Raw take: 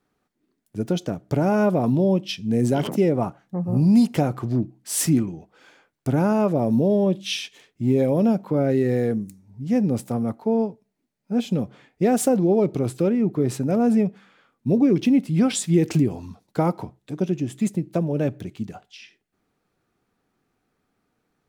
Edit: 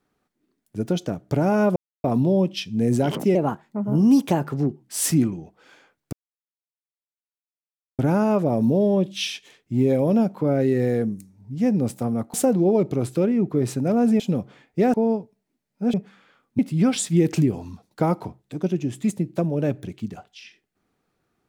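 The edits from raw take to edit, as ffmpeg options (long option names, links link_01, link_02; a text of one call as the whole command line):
ffmpeg -i in.wav -filter_complex "[0:a]asplit=10[link_01][link_02][link_03][link_04][link_05][link_06][link_07][link_08][link_09][link_10];[link_01]atrim=end=1.76,asetpts=PTS-STARTPTS,afade=type=out:start_time=1.756:duration=0.004:curve=hsin,apad=pad_dur=0.28[link_11];[link_02]atrim=start=1.76:end=3.074,asetpts=PTS-STARTPTS,afade=type=in:duration=0.004:curve=hsin[link_12];[link_03]atrim=start=3.07:end=4.76,asetpts=PTS-STARTPTS,asetrate=51156,aresample=44100,atrim=end_sample=64249,asetpts=PTS-STARTPTS[link_13];[link_04]atrim=start=4.756:end=6.08,asetpts=PTS-STARTPTS,afade=type=out:start_time=1.32:duration=0.004:curve=hsin,apad=pad_dur=1.86[link_14];[link_05]atrim=start=6.08:end=10.432,asetpts=PTS-STARTPTS,afade=type=in:duration=0.004:curve=hsin[link_15];[link_06]atrim=start=12.168:end=14.032[link_16];[link_07]atrim=start=11.428:end=12.172[link_17];[link_08]atrim=start=10.428:end=11.432[link_18];[link_09]atrim=start=14.028:end=14.682[link_19];[link_10]atrim=start=15.158[link_20];[link_11][link_12]concat=n=2:v=0:a=1[link_21];[link_21][link_13]acrossfade=duration=0.004:curve1=hsin:curve2=hsin[link_22];[link_14][link_15]concat=n=2:v=0:a=1[link_23];[link_22][link_23]acrossfade=duration=0.004:curve1=hsin:curve2=hsin[link_24];[link_24][link_16]acrossfade=duration=0.004:curve1=hsin:curve2=hsin[link_25];[link_25][link_17]acrossfade=duration=0.004:curve1=hsin:curve2=hsin[link_26];[link_26][link_18]acrossfade=duration=0.004:curve1=hsin:curve2=hsin[link_27];[link_27][link_19]acrossfade=duration=0.004:curve1=hsin:curve2=hsin[link_28];[link_28][link_20]acrossfade=duration=0.004:curve1=hsin:curve2=hsin" out.wav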